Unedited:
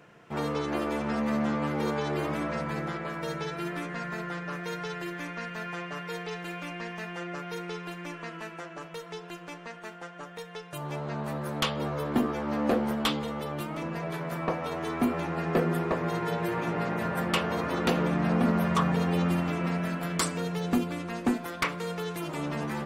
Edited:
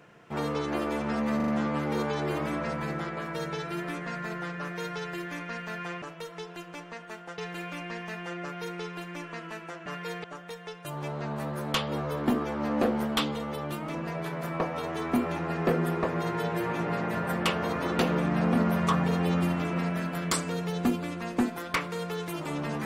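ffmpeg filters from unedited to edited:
-filter_complex "[0:a]asplit=8[a][b][c][d][e][f][g][h];[a]atrim=end=1.402[i];[b]atrim=start=1.358:end=1.402[j];[c]atrim=start=1.358:end=1.402[k];[d]atrim=start=1.358:end=5.902[l];[e]atrim=start=8.758:end=10.122[m];[f]atrim=start=6.278:end=8.762[n];[g]atrim=start=5.898:end=6.282[o];[h]atrim=start=10.118[p];[i][j]acrossfade=d=0.004:c1=hsin:c2=hsin[q];[q][k]acrossfade=d=0.004:c1=hsin:c2=hsin[r];[r][l]acrossfade=d=0.004:c1=hsin:c2=hsin[s];[s][m]acrossfade=d=0.004:c1=hsin:c2=hsin[t];[t][n]acrossfade=d=0.004:c1=hsin:c2=hsin[u];[u][o]acrossfade=d=0.004:c1=hsin:c2=hsin[v];[v][p]acrossfade=d=0.004:c1=hsin:c2=hsin"

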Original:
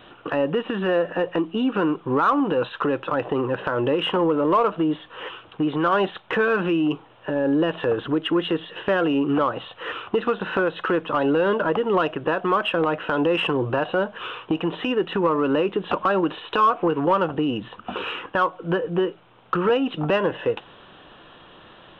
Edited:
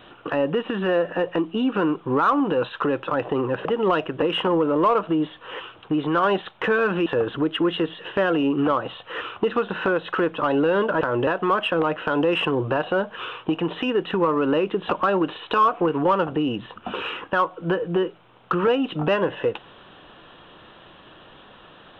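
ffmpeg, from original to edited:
-filter_complex "[0:a]asplit=6[a][b][c][d][e][f];[a]atrim=end=3.652[g];[b]atrim=start=11.718:end=12.292[h];[c]atrim=start=3.908:end=6.752[i];[d]atrim=start=7.768:end=11.722[j];[e]atrim=start=3.648:end=3.912[k];[f]atrim=start=12.288[l];[g][h]acrossfade=d=0.004:c1=hsin:c2=hsin[m];[m][i]acrossfade=d=0.004:c1=hsin:c2=hsin[n];[n][j]acrossfade=d=0.004:c1=hsin:c2=hsin[o];[o][k]acrossfade=d=0.004:c1=hsin:c2=hsin[p];[p][l]acrossfade=d=0.004:c1=hsin:c2=hsin"

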